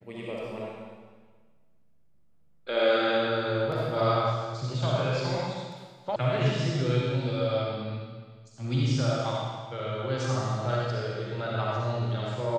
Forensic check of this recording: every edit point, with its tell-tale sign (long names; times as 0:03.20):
0:06.16: cut off before it has died away